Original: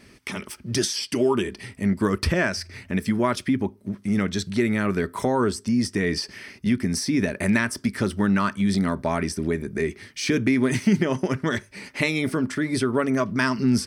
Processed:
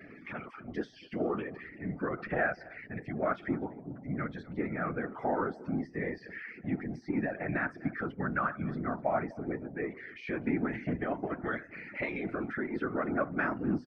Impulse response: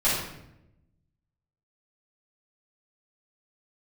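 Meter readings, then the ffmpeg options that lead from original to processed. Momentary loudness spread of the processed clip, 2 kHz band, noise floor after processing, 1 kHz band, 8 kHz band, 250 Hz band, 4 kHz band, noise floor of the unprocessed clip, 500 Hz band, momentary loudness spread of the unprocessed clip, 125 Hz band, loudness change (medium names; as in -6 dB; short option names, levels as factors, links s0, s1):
9 LU, -8.0 dB, -53 dBFS, -6.0 dB, under -40 dB, -12.0 dB, under -25 dB, -52 dBFS, -9.0 dB, 8 LU, -12.5 dB, -11.0 dB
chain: -filter_complex "[0:a]aeval=exprs='val(0)+0.5*0.0531*sgn(val(0))':c=same,aemphasis=mode=production:type=bsi,afftdn=nr=36:nf=-29,asuperstop=centerf=1000:order=20:qfactor=7.9,highpass=160,equalizer=f=170:t=q:w=4:g=5,equalizer=f=260:t=q:w=4:g=5,equalizer=f=700:t=q:w=4:g=10,equalizer=f=1400:t=q:w=4:g=7,lowpass=f=2100:w=0.5412,lowpass=f=2100:w=1.3066,asplit=2[s0][s1];[s1]adelay=250.7,volume=0.0891,highshelf=f=4000:g=-5.64[s2];[s0][s2]amix=inputs=2:normalize=0,afftfilt=real='hypot(re,im)*cos(2*PI*random(0))':imag='hypot(re,im)*sin(2*PI*random(1))':win_size=512:overlap=0.75,volume=0.501"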